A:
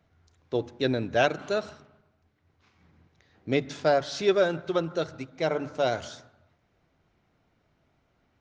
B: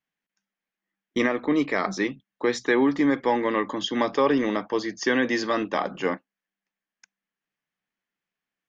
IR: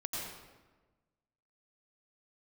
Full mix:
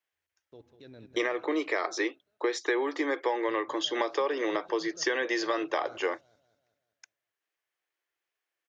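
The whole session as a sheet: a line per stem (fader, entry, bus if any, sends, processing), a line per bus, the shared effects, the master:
-15.0 dB, 0.00 s, no send, echo send -11.5 dB, gate -58 dBFS, range -21 dB; level held to a coarse grid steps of 17 dB
+1.0 dB, 0.00 s, no send, no echo send, Chebyshev high-pass 330 Hz, order 5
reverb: none
echo: feedback delay 192 ms, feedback 49%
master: compression 5:1, threshold -25 dBFS, peak gain reduction 8.5 dB

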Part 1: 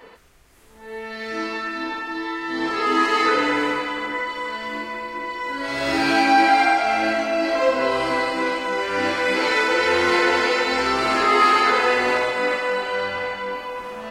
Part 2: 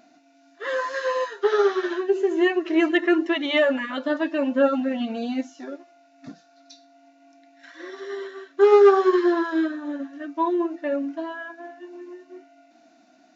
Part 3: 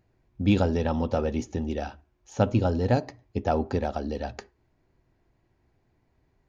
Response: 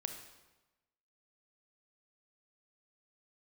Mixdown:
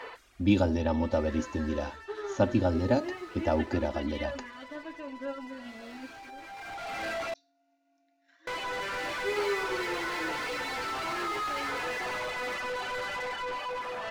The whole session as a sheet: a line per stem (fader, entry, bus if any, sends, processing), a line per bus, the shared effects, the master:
-20.0 dB, 0.00 s, muted 7.34–8.47 s, no send, Bessel high-pass 350 Hz, order 4; reverb removal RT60 0.93 s; overdrive pedal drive 36 dB, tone 2.6 kHz, clips at -6.5 dBFS; auto duck -14 dB, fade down 1.10 s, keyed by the third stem
-18.0 dB, 0.65 s, no send, none
-4.0 dB, 0.00 s, no send, comb 3.4 ms, depth 79%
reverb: none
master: none

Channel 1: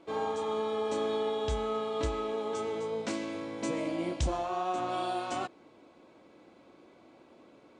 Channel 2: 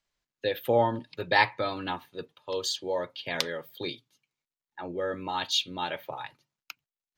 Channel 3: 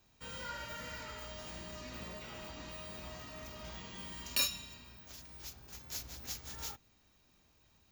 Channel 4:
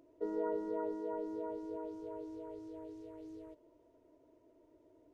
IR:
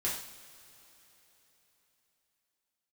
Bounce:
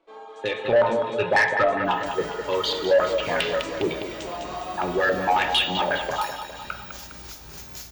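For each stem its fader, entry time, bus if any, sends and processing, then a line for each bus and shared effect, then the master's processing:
-7.5 dB, 0.00 s, no send, echo send -5.5 dB, high-pass 440 Hz 12 dB/octave; reverb removal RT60 1.6 s; treble shelf 7.7 kHz -11 dB
-3.5 dB, 0.00 s, send -6.5 dB, echo send -7 dB, reverb removal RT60 1.7 s; compression 16:1, threshold -27 dBFS, peak gain reduction 11.5 dB; step-sequenced low-pass 11 Hz 580–2800 Hz
+2.0 dB, 1.85 s, send -7 dB, echo send -7 dB, compression 12:1, threshold -51 dBFS, peak gain reduction 24 dB
-11.5 dB, 2.45 s, no send, no echo send, none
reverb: on, pre-delay 3 ms
echo: feedback delay 204 ms, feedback 55%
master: saturation -21.5 dBFS, distortion -12 dB; level rider gain up to 9 dB

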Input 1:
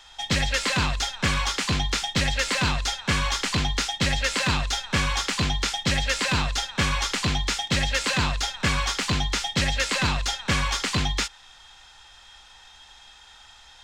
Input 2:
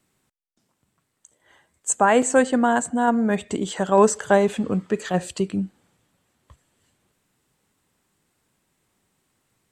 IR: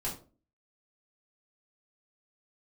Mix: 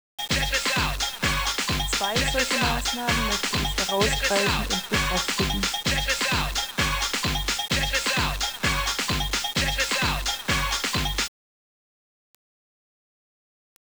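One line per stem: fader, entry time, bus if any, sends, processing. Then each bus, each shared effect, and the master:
+0.5 dB, 0.00 s, send -22.5 dB, none
-9.0 dB, 0.00 s, no send, gain riding 2 s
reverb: on, RT60 0.35 s, pre-delay 3 ms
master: bass shelf 260 Hz -5 dB; word length cut 6-bit, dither none

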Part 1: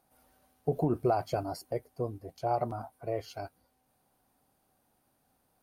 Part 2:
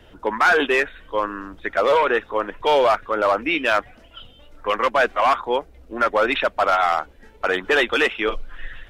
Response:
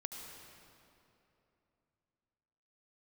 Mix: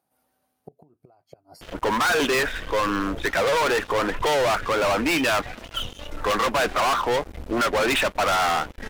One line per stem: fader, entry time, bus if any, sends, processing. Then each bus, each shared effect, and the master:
-5.0 dB, 0.00 s, no send, inverted gate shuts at -22 dBFS, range -26 dB; high-pass 100 Hz
-5.5 dB, 1.60 s, no send, gate with hold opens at -43 dBFS; waveshaping leveller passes 5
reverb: none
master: compression 2:1, threshold -23 dBFS, peak gain reduction 4 dB

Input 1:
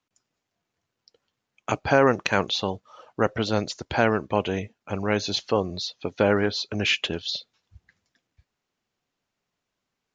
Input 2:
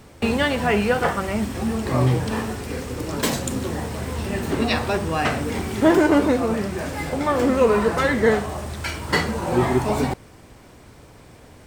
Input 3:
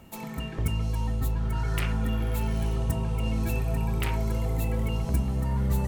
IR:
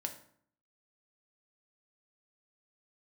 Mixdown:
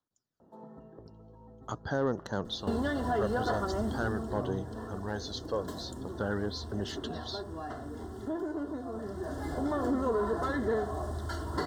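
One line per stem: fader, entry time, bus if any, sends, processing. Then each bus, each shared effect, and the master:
-11.0 dB, 0.00 s, no send, treble shelf 2.2 kHz +8.5 dB; phaser 0.45 Hz, delay 1.9 ms, feedback 45%
3.80 s -4.5 dB -> 4.58 s -14.5 dB -> 8.85 s -14.5 dB -> 9.52 s -5.5 dB, 2.45 s, no send, comb 2.9 ms, depth 55%; compression 2:1, threshold -22 dBFS, peak gain reduction 8 dB
+1.5 dB, 0.40 s, no send, compression 2:1, threshold -32 dBFS, peak gain reduction 7 dB; band-pass filter 490 Hz, Q 1.1; auto duck -9 dB, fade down 0.95 s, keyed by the first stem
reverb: none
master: treble shelf 2.5 kHz -10 dB; saturation -20.5 dBFS, distortion -20 dB; Butterworth band-stop 2.4 kHz, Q 1.5

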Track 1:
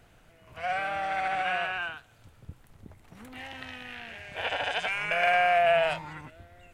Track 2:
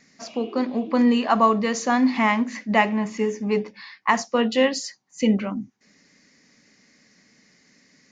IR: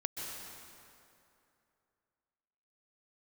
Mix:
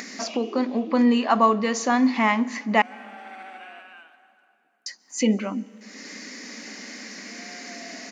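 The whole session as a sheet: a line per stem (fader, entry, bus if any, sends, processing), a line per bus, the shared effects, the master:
3.19 s -8.5 dB -> 3.68 s -16 dB, 2.15 s, send -9.5 dB, octave divider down 1 oct, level +3 dB; bass shelf 350 Hz -9 dB; auto duck -14 dB, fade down 0.85 s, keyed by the second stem
-1.0 dB, 0.00 s, muted 2.82–4.86 s, send -21.5 dB, upward compressor, threshold -21 dBFS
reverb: on, RT60 2.7 s, pre-delay 118 ms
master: brick-wall FIR high-pass 190 Hz

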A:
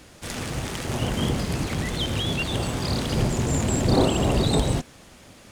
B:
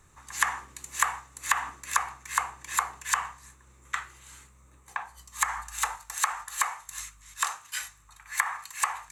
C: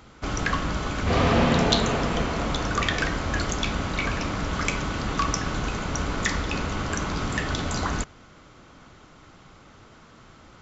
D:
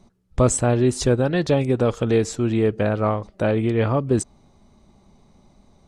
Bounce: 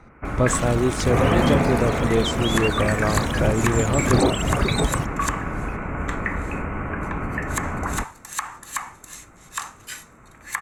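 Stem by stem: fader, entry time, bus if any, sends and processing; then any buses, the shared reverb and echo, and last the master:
+2.0 dB, 0.25 s, no send, reverb removal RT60 1.7 s; peaking EQ 4.9 kHz -7 dB 0.25 oct
-1.5 dB, 2.15 s, no send, none
+0.5 dB, 0.00 s, no send, steep low-pass 2.5 kHz 72 dB/octave
-3.0 dB, 0.00 s, no send, none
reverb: none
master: none

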